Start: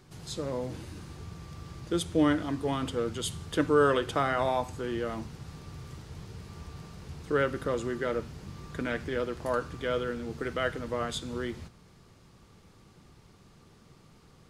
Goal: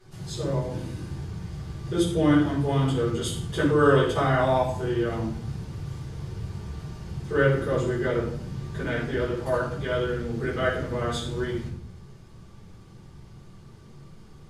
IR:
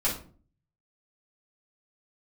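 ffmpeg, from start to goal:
-filter_complex "[0:a]equalizer=frequency=96:width_type=o:width=1.6:gain=5[link_01];[1:a]atrim=start_sample=2205,asetrate=29106,aresample=44100[link_02];[link_01][link_02]afir=irnorm=-1:irlink=0,volume=-8.5dB"

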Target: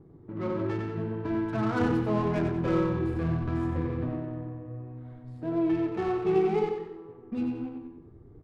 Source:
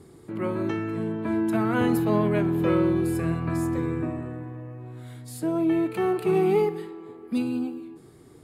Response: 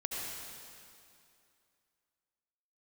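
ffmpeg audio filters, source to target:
-filter_complex "[0:a]lowshelf=frequency=78:gain=9,flanger=delay=6.1:depth=9.7:regen=-41:speed=0.71:shape=sinusoidal,asubboost=boost=2.5:cutoff=110,adynamicsmooth=sensitivity=5.5:basefreq=880,asplit=2[link_01][link_02];[link_02]aecho=0:1:93|186|279|372|465:0.501|0.19|0.0724|0.0275|0.0105[link_03];[link_01][link_03]amix=inputs=2:normalize=0"

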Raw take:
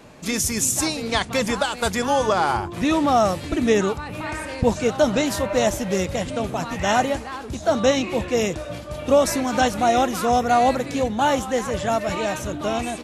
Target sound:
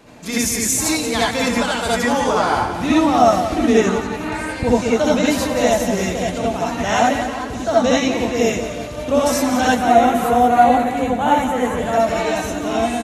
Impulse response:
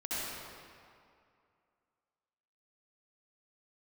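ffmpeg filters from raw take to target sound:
-filter_complex "[0:a]asettb=1/sr,asplit=3[link_01][link_02][link_03];[link_01]atrim=end=9.674[link_04];[link_02]atrim=start=9.67:end=11.93,asetpts=PTS-STARTPTS,afade=type=in:duration=0.004:curve=qsin,afade=type=out:start_time=2.256:duration=0.004:curve=qsin,equalizer=frequency=5200:width_type=o:width=0.65:gain=-15[link_05];[link_03]atrim=start=11.926[link_06];[link_04][link_05]acrossfade=duration=0.004:curve1=hsin:curve2=qsin[link_07];[link_07][link_06]acrossfade=duration=0.004:curve1=qsin:curve2=hsin,aecho=1:1:177|354|531|708|885|1062:0.316|0.164|0.0855|0.0445|0.0231|0.012[link_08];[1:a]atrim=start_sample=2205,atrim=end_sample=3969[link_09];[link_08][link_09]afir=irnorm=-1:irlink=0,volume=4dB"

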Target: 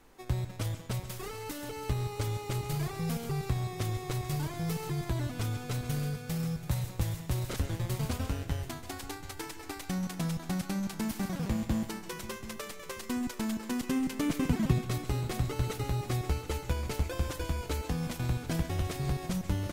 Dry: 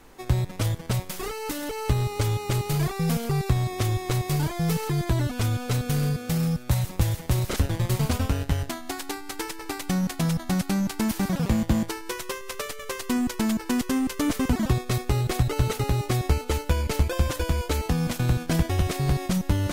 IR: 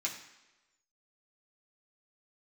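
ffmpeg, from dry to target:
-filter_complex "[0:a]asettb=1/sr,asplit=3[link_01][link_02][link_03];[link_01]atrim=end=13.834[link_04];[link_02]atrim=start=13.83:end=14.85,asetpts=PTS-STARTPTS,afade=type=in:duration=0.004:curve=qsin,afade=type=out:start_time=1.016:duration=0.004:curve=qsin,equalizer=frequency=160:width_type=o:width=0.67:gain=11,equalizer=frequency=400:width_type=o:width=0.67:gain=3,equalizer=frequency=2500:width_type=o:width=0.67:gain=4[link_05];[link_03]atrim=start=14.846[link_06];[link_04][link_05]acrossfade=duration=0.004:curve1=hsin:curve2=qsin[link_07];[link_07][link_06]acrossfade=duration=0.004:curve1=qsin:curve2=hsin,aecho=1:1:733|1466|2199:0.178|0.064|0.023,asplit=2[link_08][link_09];[1:a]atrim=start_sample=2205,adelay=133[link_10];[link_09][link_10]afir=irnorm=-1:irlink=0,volume=-14.5dB[link_11];[link_08][link_11]amix=inputs=2:normalize=0,volume=-8.5dB"

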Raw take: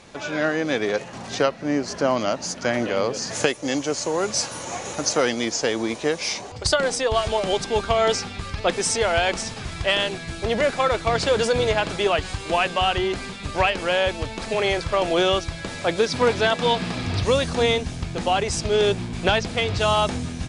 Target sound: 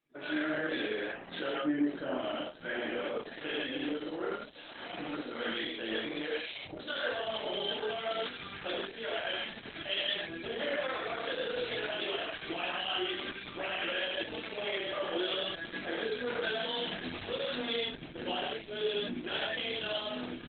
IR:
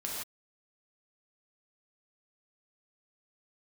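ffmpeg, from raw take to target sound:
-filter_complex "[0:a]tiltshelf=frequency=1400:gain=-4,asettb=1/sr,asplit=3[link_01][link_02][link_03];[link_01]atrim=end=4.364[link_04];[link_02]atrim=start=4.36:end=7.02,asetpts=PTS-STARTPTS,afade=type=in:duration=0.004:curve=qsin,afade=type=out:start_time=2.656:duration=0.004:curve=qsin,acrossover=split=390[link_05][link_06];[link_06]adelay=150[link_07];[link_05][link_07]amix=inputs=2:normalize=0,atrim=end_sample=117306[link_08];[link_03]atrim=start=7.016[link_09];[link_04][link_08]acrossfade=duration=0.004:curve1=hsin:curve2=qsin[link_10];[link_10][link_09]acrossfade=duration=0.004:curve1=qsin:curve2=hsin[link_11];[1:a]atrim=start_sample=2205,afade=type=out:start_time=0.22:duration=0.01,atrim=end_sample=10143[link_12];[link_11][link_12]afir=irnorm=-1:irlink=0,asoftclip=type=tanh:threshold=-10dB,afftdn=noise_reduction=26:noise_floor=-38,alimiter=limit=-19.5dB:level=0:latency=1:release=89,aresample=32000,aresample=44100,highpass=200,flanger=delay=20:depth=7.9:speed=0.57,adynamicsmooth=sensitivity=4:basefreq=2700,equalizer=frequency=315:width_type=o:width=0.33:gain=8,equalizer=frequency=1000:width_type=o:width=0.33:gain=-8,equalizer=frequency=1600:width_type=o:width=0.33:gain=5,equalizer=frequency=3150:width_type=o:width=0.33:gain=8,equalizer=frequency=6300:width_type=o:width=0.33:gain=-11,volume=-3.5dB" -ar 48000 -c:a libopus -b:a 8k

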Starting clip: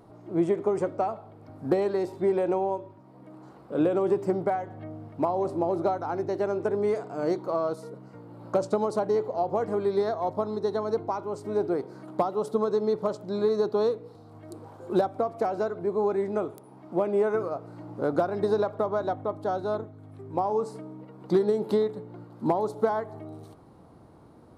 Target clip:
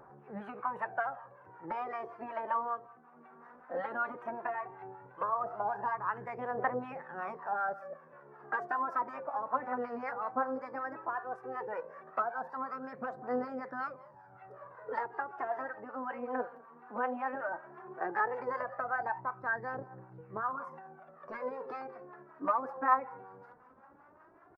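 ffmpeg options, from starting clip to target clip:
ffmpeg -i in.wav -filter_complex "[0:a]aecho=1:1:193:0.0708,afftfilt=real='re*lt(hypot(re,im),0.447)':imag='im*lt(hypot(re,im),0.447)':win_size=1024:overlap=0.75,acrossover=split=520 2900:gain=0.251 1 0.0631[link_01][link_02][link_03];[link_01][link_02][link_03]amix=inputs=3:normalize=0,asetrate=53981,aresample=44100,atempo=0.816958,aphaser=in_gain=1:out_gain=1:delay=4.4:decay=0.63:speed=0.15:type=triangular,acrossover=split=660[link_04][link_05];[link_04]aeval=exprs='val(0)*(1-0.7/2+0.7/2*cos(2*PI*5.3*n/s))':channel_layout=same[link_06];[link_05]aeval=exprs='val(0)*(1-0.7/2-0.7/2*cos(2*PI*5.3*n/s))':channel_layout=same[link_07];[link_06][link_07]amix=inputs=2:normalize=0,highshelf=frequency=2400:width_type=q:width=1.5:gain=-10" out.wav

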